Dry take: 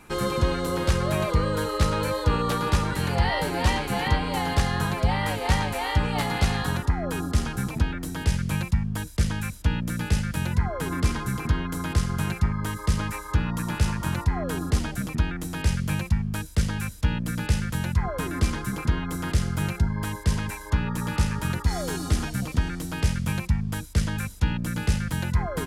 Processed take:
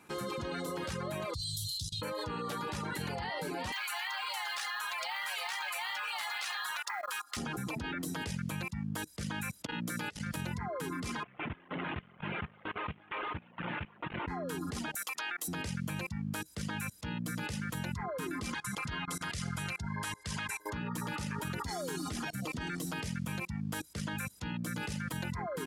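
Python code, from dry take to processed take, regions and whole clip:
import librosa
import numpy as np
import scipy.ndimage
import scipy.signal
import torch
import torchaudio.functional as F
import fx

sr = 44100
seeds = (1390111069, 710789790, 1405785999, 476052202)

y = fx.chain(x, sr, fx.cheby1_bandstop(low_hz=140.0, high_hz=3500.0, order=5),
    fx.high_shelf(hz=2800.0, db=4.0),
    fx.band_squash(depth_pct=70), at=(1.34, 2.02))
y = fx.chain(y, sr, fx.highpass(hz=940.0, slope=24),
    fx.peak_eq(hz=2800.0, db=2.5, octaves=1.9),
    fx.quant_float(bits=2), at=(3.72, 7.37))
y = fx.chain(y, sr, fx.low_shelf(hz=120.0, db=-10.5),
    fx.hum_notches(base_hz=60, count=4),
    fx.level_steps(step_db=19), at=(9.65, 10.26))
y = fx.chain(y, sr, fx.delta_mod(bps=16000, step_db=-22.0),
    fx.level_steps(step_db=19), at=(11.23, 14.28))
y = fx.chain(y, sr, fx.highpass(hz=800.0, slope=12),
    fx.high_shelf(hz=7900.0, db=8.5), at=(14.95, 15.48))
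y = fx.chain(y, sr, fx.lowpass(hz=11000.0, slope=24),
    fx.peak_eq(hz=330.0, db=-12.0, octaves=2.3), at=(18.54, 20.6))
y = scipy.signal.sosfilt(scipy.signal.butter(2, 140.0, 'highpass', fs=sr, output='sos'), y)
y = fx.dereverb_blind(y, sr, rt60_s=1.0)
y = fx.level_steps(y, sr, step_db=22)
y = y * librosa.db_to_amplitude(6.5)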